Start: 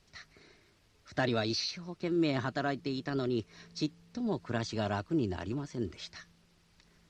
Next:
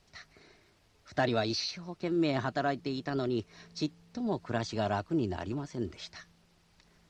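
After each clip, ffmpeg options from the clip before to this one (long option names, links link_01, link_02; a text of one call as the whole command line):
ffmpeg -i in.wav -af "equalizer=frequency=750:width_type=o:width=0.8:gain=4.5" out.wav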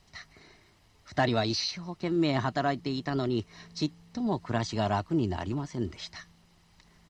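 ffmpeg -i in.wav -af "aecho=1:1:1:0.31,volume=3dB" out.wav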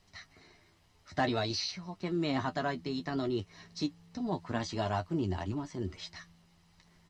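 ffmpeg -i in.wav -af "flanger=delay=10:depth=2.4:regen=32:speed=0.54:shape=triangular" out.wav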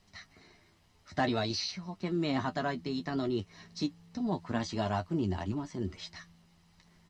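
ffmpeg -i in.wav -af "equalizer=frequency=210:width_type=o:width=0.37:gain=5" out.wav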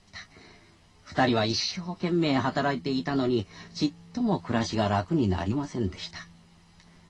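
ffmpeg -i in.wav -af "volume=6.5dB" -ar 24000 -c:a aac -b:a 32k out.aac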